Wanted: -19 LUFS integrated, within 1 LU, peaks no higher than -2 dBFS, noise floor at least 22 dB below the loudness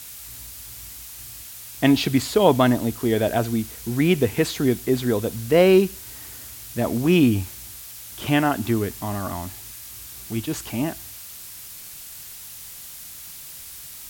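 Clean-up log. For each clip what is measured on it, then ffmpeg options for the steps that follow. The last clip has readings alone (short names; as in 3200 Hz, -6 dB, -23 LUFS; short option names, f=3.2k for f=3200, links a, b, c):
noise floor -40 dBFS; noise floor target -44 dBFS; loudness -21.5 LUFS; peak -2.5 dBFS; loudness target -19.0 LUFS
-> -af "afftdn=nr=6:nf=-40"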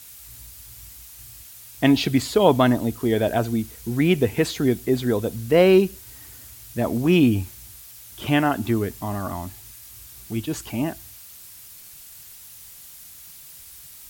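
noise floor -44 dBFS; loudness -21.5 LUFS; peak -2.5 dBFS; loudness target -19.0 LUFS
-> -af "volume=2.5dB,alimiter=limit=-2dB:level=0:latency=1"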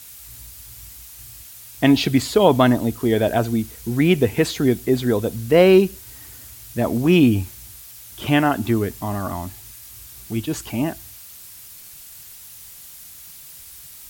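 loudness -19.0 LUFS; peak -2.0 dBFS; noise floor -42 dBFS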